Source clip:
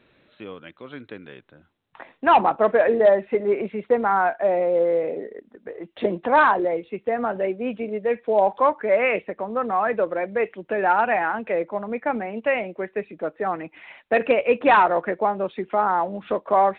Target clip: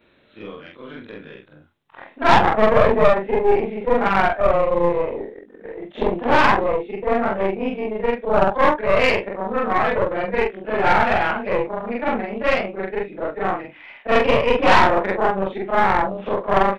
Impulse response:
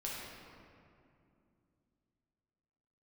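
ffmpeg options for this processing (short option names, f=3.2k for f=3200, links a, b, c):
-filter_complex "[0:a]afftfilt=real='re':imag='-im':win_size=4096:overlap=0.75,asplit=2[a][b];[b]adelay=20,volume=-9dB[c];[a][c]amix=inputs=2:normalize=0,aeval=exprs='0.398*(cos(1*acos(clip(val(0)/0.398,-1,1)))-cos(1*PI/2))+0.112*(cos(4*acos(clip(val(0)/0.398,-1,1)))-cos(4*PI/2))+0.01*(cos(8*acos(clip(val(0)/0.398,-1,1)))-cos(8*PI/2))':c=same,asplit=2[d][e];[e]asoftclip=type=hard:threshold=-17.5dB,volume=-9dB[f];[d][f]amix=inputs=2:normalize=0,volume=3.5dB"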